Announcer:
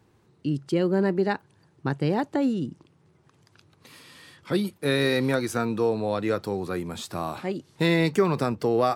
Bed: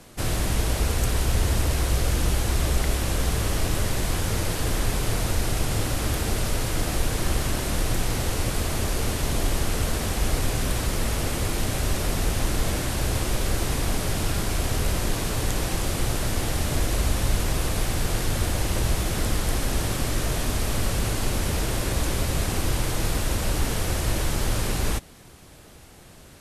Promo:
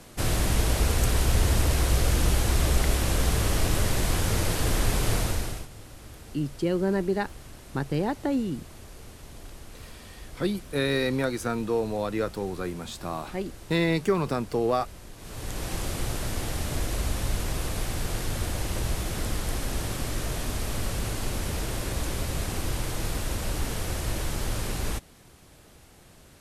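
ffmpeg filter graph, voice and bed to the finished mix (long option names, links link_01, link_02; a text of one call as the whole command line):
ffmpeg -i stem1.wav -i stem2.wav -filter_complex "[0:a]adelay=5900,volume=-2.5dB[link_01];[1:a]volume=15dB,afade=type=out:start_time=5.15:duration=0.53:silence=0.1,afade=type=in:start_time=15.17:duration=0.59:silence=0.177828[link_02];[link_01][link_02]amix=inputs=2:normalize=0" out.wav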